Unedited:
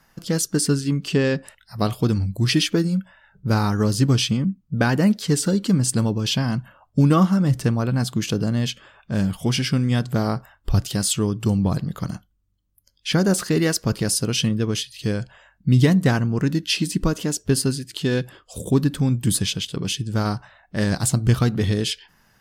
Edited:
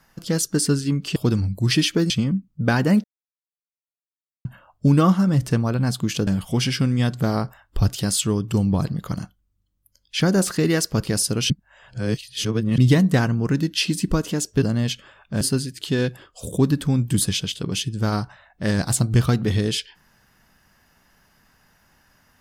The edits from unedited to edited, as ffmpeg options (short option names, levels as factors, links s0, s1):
-filter_complex "[0:a]asplit=10[s0][s1][s2][s3][s4][s5][s6][s7][s8][s9];[s0]atrim=end=1.162[s10];[s1]atrim=start=1.938:end=2.882[s11];[s2]atrim=start=4.228:end=5.17,asetpts=PTS-STARTPTS,afade=t=out:st=0.938:d=0.004:c=hsin[s12];[s3]atrim=start=5.17:end=6.58,asetpts=PTS-STARTPTS,volume=0[s13];[s4]atrim=start=6.58:end=8.402,asetpts=PTS-STARTPTS,afade=t=in:d=0.004:c=hsin[s14];[s5]atrim=start=9.188:end=14.422[s15];[s6]atrim=start=14.418:end=15.702,asetpts=PTS-STARTPTS,areverse[s16];[s7]atrim=start=15.698:end=17.542[s17];[s8]atrim=start=8.398:end=9.192[s18];[s9]atrim=start=17.538[s19];[s10][s11]acrossfade=d=0.004:c1=hsin:c2=hsin[s20];[s12][s13][s14]concat=n=3:v=0:a=1[s21];[s20][s21]acrossfade=d=0.004:c1=hsin:c2=hsin[s22];[s22][s15]acrossfade=d=0.004:c1=hsin:c2=hsin[s23];[s23][s16]acrossfade=d=0.004:c1=hsin:c2=hsin[s24];[s24][s17]acrossfade=d=0.004:c1=hsin:c2=hsin[s25];[s25][s18]acrossfade=d=0.004:c1=hsin:c2=hsin[s26];[s26][s19]acrossfade=d=0.004:c1=hsin:c2=hsin"